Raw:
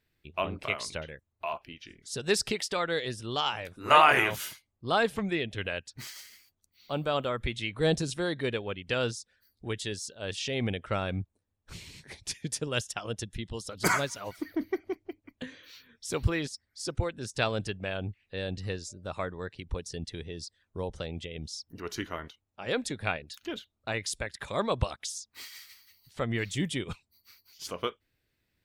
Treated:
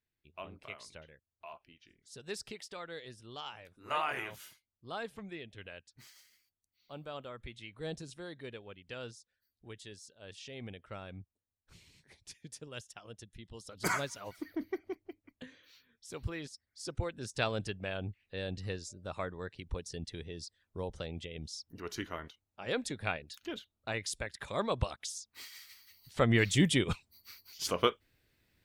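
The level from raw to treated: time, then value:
0:13.32 −14.5 dB
0:13.92 −6 dB
0:14.96 −6 dB
0:16.11 −12.5 dB
0:17.20 −4 dB
0:25.58 −4 dB
0:26.25 +4.5 dB

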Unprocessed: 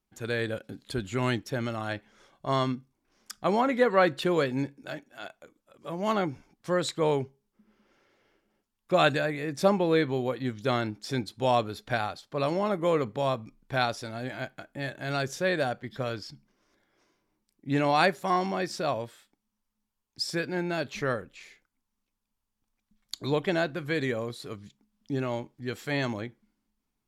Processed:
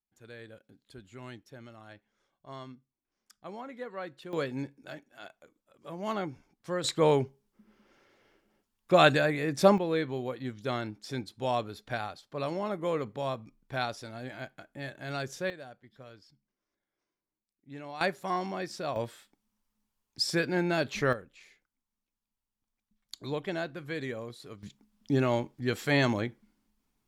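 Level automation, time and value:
−17.5 dB
from 0:04.33 −6 dB
from 0:06.84 +2 dB
from 0:09.78 −5.5 dB
from 0:15.50 −18 dB
from 0:18.01 −5.5 dB
from 0:18.96 +2 dB
from 0:21.13 −7 dB
from 0:24.63 +4 dB

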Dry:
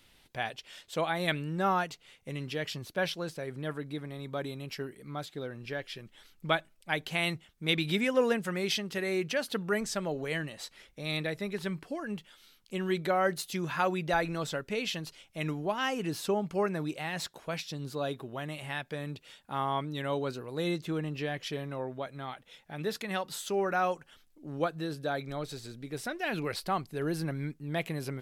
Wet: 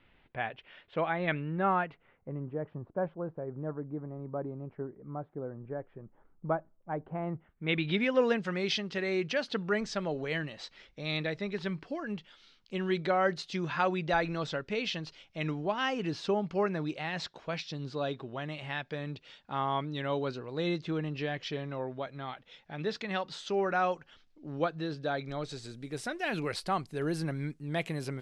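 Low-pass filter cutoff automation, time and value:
low-pass filter 24 dB per octave
0:01.80 2,600 Hz
0:02.39 1,100 Hz
0:07.28 1,100 Hz
0:07.69 2,800 Hz
0:08.22 5,400 Hz
0:25.17 5,400 Hz
0:25.78 10,000 Hz

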